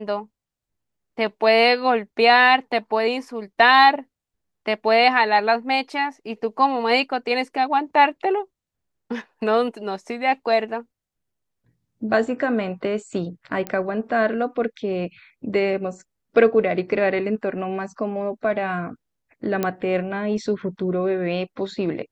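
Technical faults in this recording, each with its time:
0:13.67: click −13 dBFS
0:19.63: click −9 dBFS

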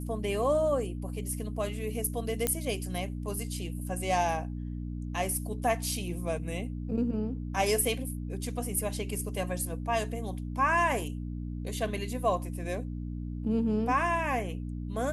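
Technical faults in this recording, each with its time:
mains hum 60 Hz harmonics 5 −36 dBFS
0:02.47: click −11 dBFS

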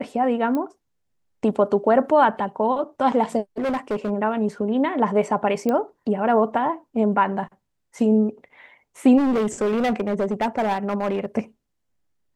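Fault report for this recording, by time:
0:00.55: click −15 dBFS
0:03.58–0:04.11: clipping −20.5 dBFS
0:05.69: click −12 dBFS
0:09.17–0:11.26: clipping −18 dBFS

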